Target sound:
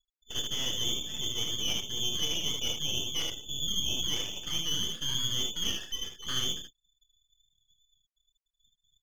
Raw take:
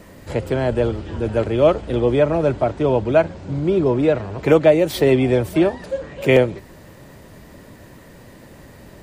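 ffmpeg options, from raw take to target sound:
ffmpeg -i in.wav -filter_complex "[0:a]lowpass=frequency=3100:width_type=q:width=0.5098,lowpass=frequency=3100:width_type=q:width=0.6013,lowpass=frequency=3100:width_type=q:width=0.9,lowpass=frequency=3100:width_type=q:width=2.563,afreqshift=-3600,agate=range=-12dB:threshold=-32dB:ratio=16:detection=peak,areverse,acompressor=threshold=-20dB:ratio=16,areverse,asoftclip=type=tanh:threshold=-15dB,afftfilt=real='re*gte(hypot(re,im),0.0158)':imag='im*gte(hypot(re,im),0.0158)':win_size=1024:overlap=0.75,asplit=2[link_01][link_02];[link_02]aecho=0:1:27|77:0.447|0.596[link_03];[link_01][link_03]amix=inputs=2:normalize=0,aeval=exprs='max(val(0),0)':channel_layout=same,volume=-4.5dB" out.wav

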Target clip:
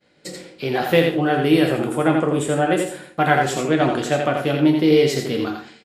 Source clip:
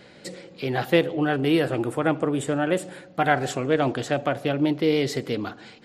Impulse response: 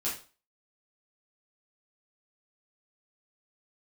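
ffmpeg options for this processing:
-filter_complex "[0:a]agate=range=-33dB:threshold=-39dB:ratio=3:detection=peak,aecho=1:1:84:0.562,asplit=2[link_01][link_02];[1:a]atrim=start_sample=2205,highshelf=frequency=6700:gain=8.5[link_03];[link_02][link_03]afir=irnorm=-1:irlink=0,volume=-7dB[link_04];[link_01][link_04]amix=inputs=2:normalize=0"

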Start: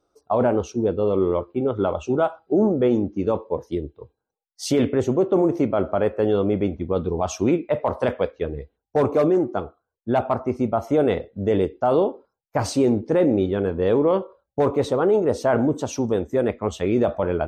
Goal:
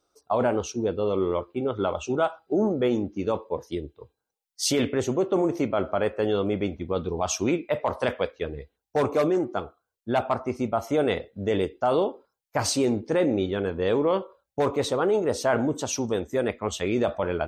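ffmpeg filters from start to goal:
ffmpeg -i in.wav -af "tiltshelf=frequency=1400:gain=-5.5" out.wav

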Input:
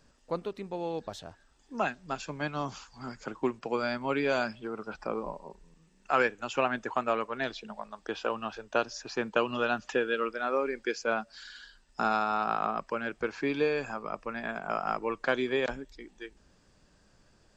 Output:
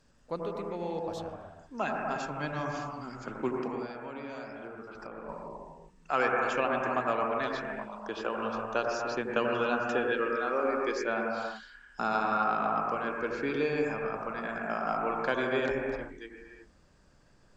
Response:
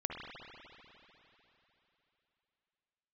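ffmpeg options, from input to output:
-filter_complex "[0:a]asettb=1/sr,asplit=3[link_01][link_02][link_03];[link_01]atrim=end=3.674[link_04];[link_02]atrim=start=3.67:end=5.29,asetpts=PTS-STARTPTS,afade=type=in:duration=0.004:curve=qsin,afade=type=out:start_time=1.616:duration=0.004:curve=qsin,acompressor=threshold=-39dB:ratio=6[link_05];[link_03]atrim=start=5.286[link_06];[link_04][link_05]acrossfade=duration=0.004:curve1=hsin:curve2=qsin[link_07];[link_07][link_06]acrossfade=duration=0.004:curve1=qsin:curve2=hsin[link_08];[1:a]atrim=start_sample=2205,afade=type=out:start_time=0.29:duration=0.01,atrim=end_sample=13230,asetrate=27342,aresample=44100[link_09];[link_08][link_09]afir=irnorm=-1:irlink=0,volume=-3.5dB"

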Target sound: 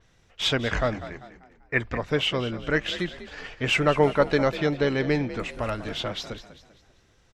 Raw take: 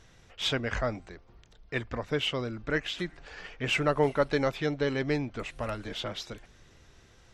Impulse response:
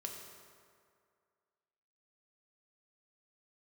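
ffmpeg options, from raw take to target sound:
-filter_complex "[0:a]agate=range=-9dB:threshold=-46dB:ratio=16:detection=peak,asettb=1/sr,asplit=3[link_01][link_02][link_03];[link_01]atrim=end=1.034[link_04];[link_02]atrim=start=1.03:end=1.8,asetpts=PTS-STARTPTS,afade=type=in:duration=0.004:curve=qsin,afade=type=out:start_time=0.766:duration=0.004:curve=qsin,highshelf=frequency=2700:width_type=q:width=3:gain=-8[link_05];[link_03]atrim=start=1.796[link_06];[link_04][link_05]acrossfade=duration=0.004:curve1=hsin:curve2=qsin[link_07];[link_07][link_06]acrossfade=duration=0.004:curve1=qsin:curve2=hsin,asplit=5[link_08][link_09][link_10][link_11][link_12];[link_09]adelay=196,afreqshift=45,volume=-14dB[link_13];[link_10]adelay=392,afreqshift=90,volume=-22.2dB[link_14];[link_11]adelay=588,afreqshift=135,volume=-30.4dB[link_15];[link_12]adelay=784,afreqshift=180,volume=-38.5dB[link_16];[link_08][link_13][link_14][link_15][link_16]amix=inputs=5:normalize=0,adynamicequalizer=threshold=0.00355:dfrequency=5200:dqfactor=0.7:tfrequency=5200:tqfactor=0.7:attack=5:release=100:ratio=0.375:range=2.5:mode=cutabove:tftype=highshelf,volume=5dB"

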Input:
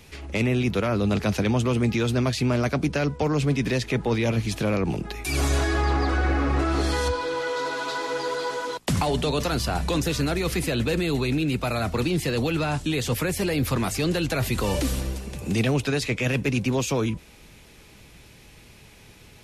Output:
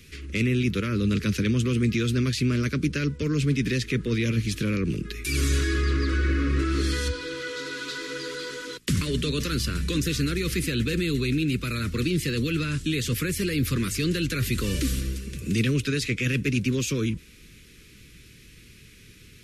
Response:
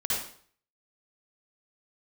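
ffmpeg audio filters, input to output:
-af "asuperstop=centerf=770:order=4:qfactor=0.73"

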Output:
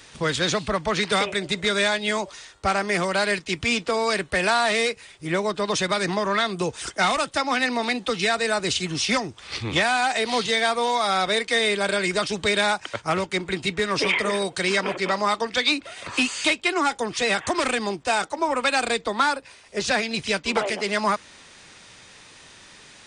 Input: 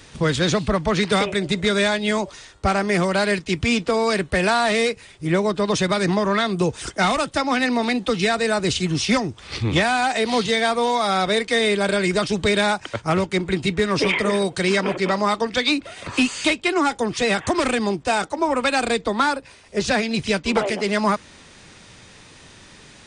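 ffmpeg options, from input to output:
ffmpeg -i in.wav -af "lowshelf=frequency=400:gain=-9.5" out.wav

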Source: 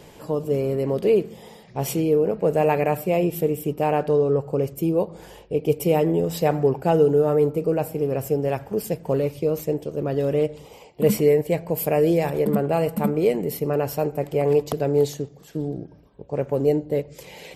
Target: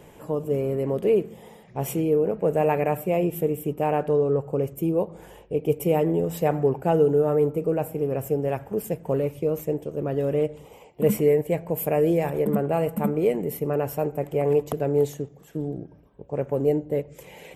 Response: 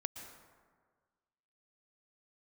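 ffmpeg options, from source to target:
-af "equalizer=frequency=4600:width=1.8:gain=-12,volume=-2dB"

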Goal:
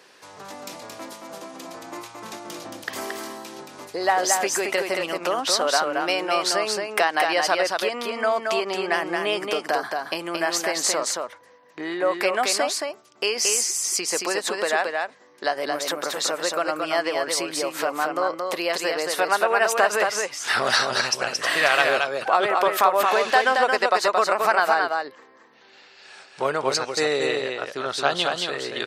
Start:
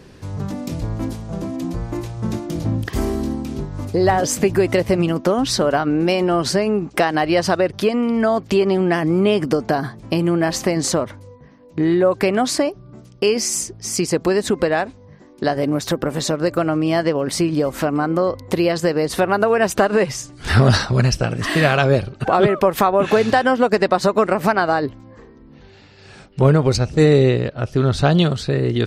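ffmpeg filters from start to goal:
ffmpeg -i in.wav -filter_complex "[0:a]highpass=750,asplit=2[link_01][link_02];[link_02]aecho=0:1:224:0.631[link_03];[link_01][link_03]amix=inputs=2:normalize=0" out.wav

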